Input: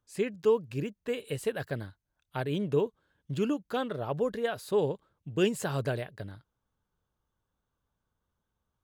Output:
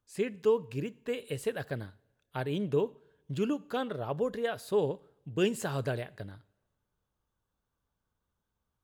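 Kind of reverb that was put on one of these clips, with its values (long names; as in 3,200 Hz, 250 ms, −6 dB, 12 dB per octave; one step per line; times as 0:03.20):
coupled-rooms reverb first 0.57 s, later 1.7 s, from −18 dB, DRR 18.5 dB
level −1.5 dB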